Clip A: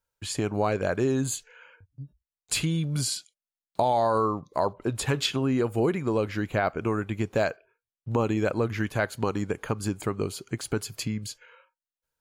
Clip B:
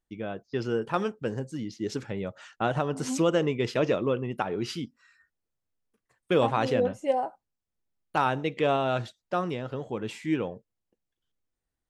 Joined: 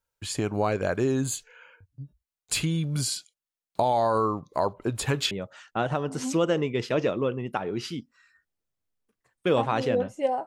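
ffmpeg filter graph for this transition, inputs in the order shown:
-filter_complex "[0:a]apad=whole_dur=10.46,atrim=end=10.46,atrim=end=5.312[s0];[1:a]atrim=start=2.158:end=7.31[s1];[s0][s1]acrossfade=d=0.004:c1=hsin:c2=hsin"

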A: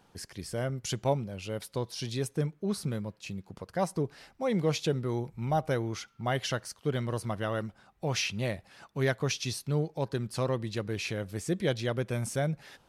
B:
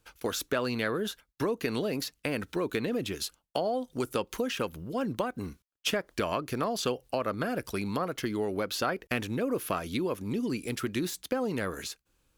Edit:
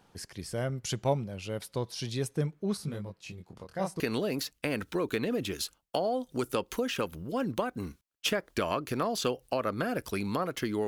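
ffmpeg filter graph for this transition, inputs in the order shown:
-filter_complex "[0:a]asettb=1/sr,asplit=3[s0][s1][s2];[s0]atrim=end=2.774[s3];[s1]atrim=start=2.77:end=4,asetpts=PTS-STARTPTS,afade=t=in:d=0.004:c=qsin,afade=t=out:st=1.226:d=0.004:c=qsin,flanger=delay=20:depth=6.7:speed=0.39[s4];[s2]atrim=start=3.996[s5];[s3][s4]acrossfade=d=0.004:c1=hsin:c2=qsin[s6];[s6][s5]acrossfade=d=0.004:c1=qsin:c2=hsin,apad=whole_dur=10.87,atrim=end=10.87,atrim=end=4.002[s7];[1:a]atrim=start=1.608:end=8.48[s8];[s7][s8]acrossfade=d=0.004:c1=hsin:c2=hsin"

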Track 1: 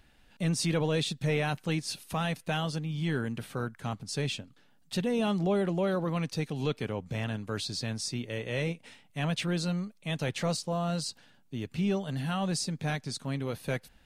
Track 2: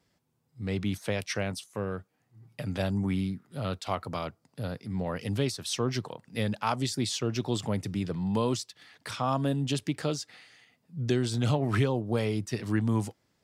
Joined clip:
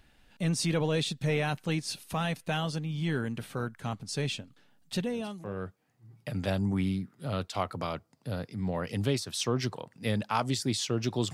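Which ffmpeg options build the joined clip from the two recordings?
-filter_complex "[0:a]apad=whole_dur=11.33,atrim=end=11.33,atrim=end=5.69,asetpts=PTS-STARTPTS[s0];[1:a]atrim=start=1.29:end=7.65,asetpts=PTS-STARTPTS[s1];[s0][s1]acrossfade=d=0.72:c1=qua:c2=qua"

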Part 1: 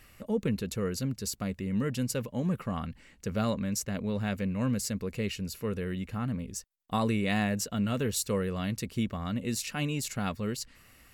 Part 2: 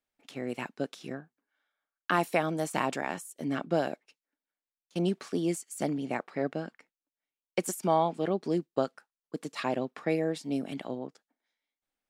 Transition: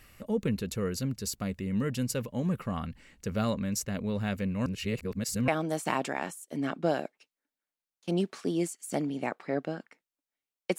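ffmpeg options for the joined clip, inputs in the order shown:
-filter_complex "[0:a]apad=whole_dur=10.78,atrim=end=10.78,asplit=2[s0][s1];[s0]atrim=end=4.662[s2];[s1]atrim=start=4.658:end=5.482,asetpts=PTS-STARTPTS,areverse[s3];[1:a]atrim=start=2.358:end=7.66[s4];[s2][s3]acrossfade=d=0.004:c1=hsin:c2=hsin[s5];[s5][s4]acrossfade=d=0.004:c1=hsin:c2=hsin"

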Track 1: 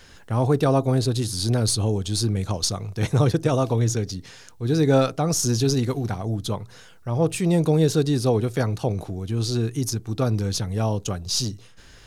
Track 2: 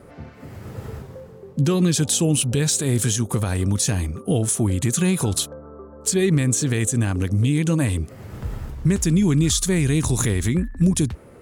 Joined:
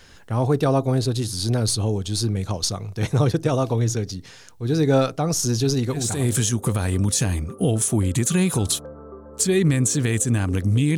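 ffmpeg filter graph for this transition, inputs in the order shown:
-filter_complex "[0:a]apad=whole_dur=10.97,atrim=end=10.97,atrim=end=6.41,asetpts=PTS-STARTPTS[s0];[1:a]atrim=start=2.54:end=7.64,asetpts=PTS-STARTPTS[s1];[s0][s1]acrossfade=d=0.54:c1=qsin:c2=qsin"

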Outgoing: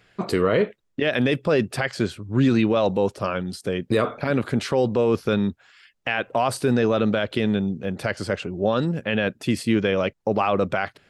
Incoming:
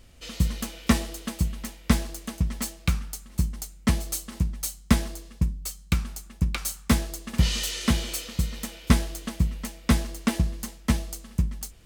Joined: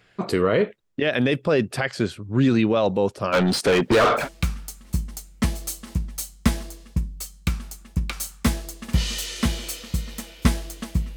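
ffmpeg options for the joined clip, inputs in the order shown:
-filter_complex "[0:a]asplit=3[s0][s1][s2];[s0]afade=t=out:st=3.32:d=0.02[s3];[s1]asplit=2[s4][s5];[s5]highpass=f=720:p=1,volume=35.5,asoftclip=type=tanh:threshold=0.316[s6];[s4][s6]amix=inputs=2:normalize=0,lowpass=f=2900:p=1,volume=0.501,afade=t=in:st=3.32:d=0.02,afade=t=out:st=4.29:d=0.02[s7];[s2]afade=t=in:st=4.29:d=0.02[s8];[s3][s7][s8]amix=inputs=3:normalize=0,apad=whole_dur=11.16,atrim=end=11.16,atrim=end=4.29,asetpts=PTS-STARTPTS[s9];[1:a]atrim=start=2.6:end=9.61,asetpts=PTS-STARTPTS[s10];[s9][s10]acrossfade=d=0.14:c1=tri:c2=tri"

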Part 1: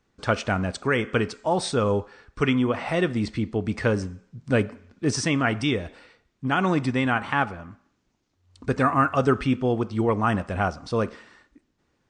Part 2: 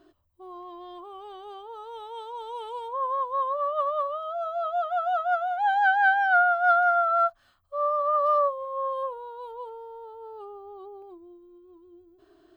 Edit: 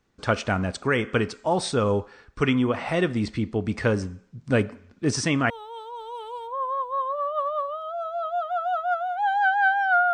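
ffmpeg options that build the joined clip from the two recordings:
-filter_complex "[0:a]apad=whole_dur=10.13,atrim=end=10.13,atrim=end=5.502[s0];[1:a]atrim=start=1.908:end=6.54[s1];[s0][s1]acrossfade=d=0.004:c1=hsin:c2=hsin"

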